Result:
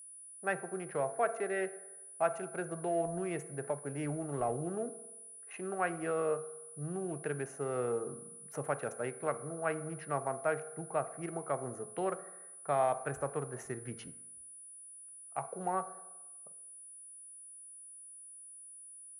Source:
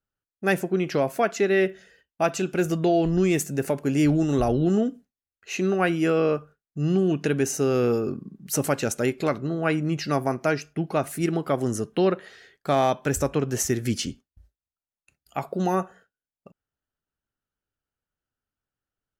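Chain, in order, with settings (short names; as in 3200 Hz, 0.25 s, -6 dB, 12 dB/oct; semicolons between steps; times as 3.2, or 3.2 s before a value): Wiener smoothing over 15 samples; three-band isolator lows -21 dB, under 490 Hz, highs -23 dB, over 2100 Hz; reverb RT60 1.1 s, pre-delay 3 ms, DRR 11.5 dB; whine 9800 Hz -43 dBFS; bell 140 Hz +12.5 dB 0.69 oct; gain -6 dB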